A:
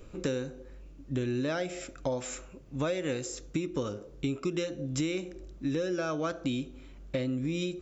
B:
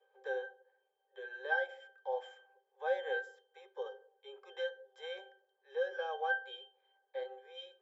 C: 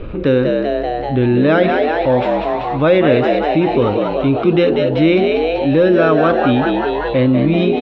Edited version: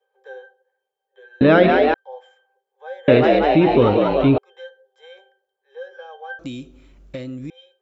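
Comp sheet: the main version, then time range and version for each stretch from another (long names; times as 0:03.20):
B
0:01.41–0:01.94: punch in from C
0:03.08–0:04.38: punch in from C
0:06.39–0:07.50: punch in from A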